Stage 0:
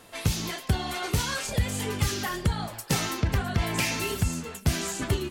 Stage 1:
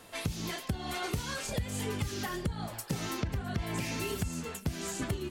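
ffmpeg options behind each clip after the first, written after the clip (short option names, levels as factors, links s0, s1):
-filter_complex "[0:a]acrossover=split=550[s0][s1];[s1]alimiter=level_in=1.06:limit=0.0631:level=0:latency=1:release=383,volume=0.944[s2];[s0][s2]amix=inputs=2:normalize=0,acompressor=threshold=0.0398:ratio=6,volume=0.841"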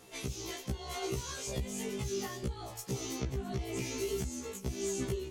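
-af "equalizer=f=100:t=o:w=0.33:g=10,equalizer=f=400:t=o:w=0.33:g=9,equalizer=f=1600:t=o:w=0.33:g=-6,equalizer=f=6300:t=o:w=0.33:g=8,afftfilt=real='re*1.73*eq(mod(b,3),0)':imag='im*1.73*eq(mod(b,3),0)':win_size=2048:overlap=0.75,volume=0.794"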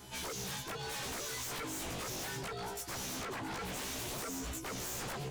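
-af "afftfilt=real='real(if(between(b,1,1008),(2*floor((b-1)/24)+1)*24-b,b),0)':imag='imag(if(between(b,1,1008),(2*floor((b-1)/24)+1)*24-b,b),0)*if(between(b,1,1008),-1,1)':win_size=2048:overlap=0.75,aeval=exprs='0.01*(abs(mod(val(0)/0.01+3,4)-2)-1)':c=same,volume=1.68"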